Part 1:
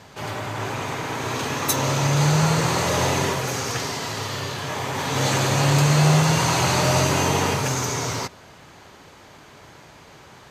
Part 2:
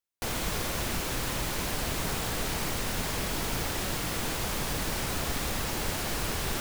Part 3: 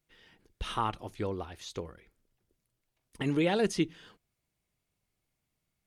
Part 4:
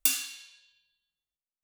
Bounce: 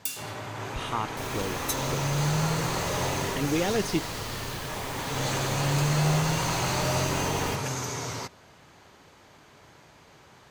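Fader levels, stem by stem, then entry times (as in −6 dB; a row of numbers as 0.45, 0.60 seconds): −7.5, −7.5, +0.5, −7.5 decibels; 0.00, 0.95, 0.15, 0.00 seconds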